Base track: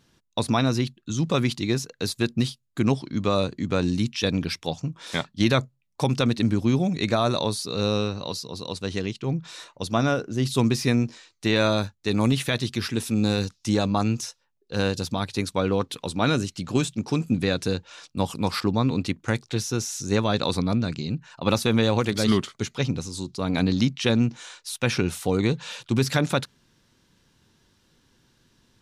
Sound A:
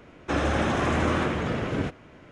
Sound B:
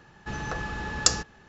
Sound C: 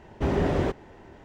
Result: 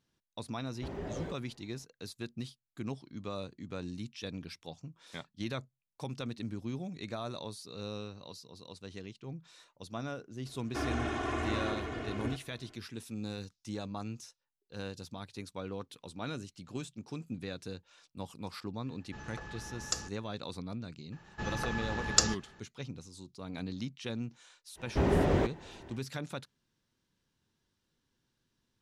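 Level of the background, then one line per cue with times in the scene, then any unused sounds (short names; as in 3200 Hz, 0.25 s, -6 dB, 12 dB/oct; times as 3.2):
base track -17 dB
0.61 add C -8.5 dB + spectral noise reduction 8 dB
10.46 add A -12 dB + comb 2.8 ms, depth 81%
18.86 add B -13 dB
21.12 add B -3.5 dB
24.75 add C -2.5 dB, fades 0.05 s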